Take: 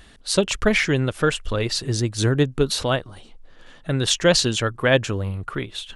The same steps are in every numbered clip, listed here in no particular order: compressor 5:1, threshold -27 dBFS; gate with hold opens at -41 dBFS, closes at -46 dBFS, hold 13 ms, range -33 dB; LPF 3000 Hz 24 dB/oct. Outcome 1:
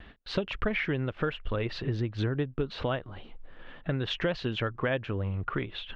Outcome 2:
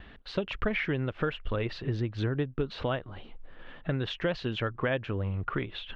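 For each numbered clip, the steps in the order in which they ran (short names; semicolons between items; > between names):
LPF > compressor > gate with hold; compressor > gate with hold > LPF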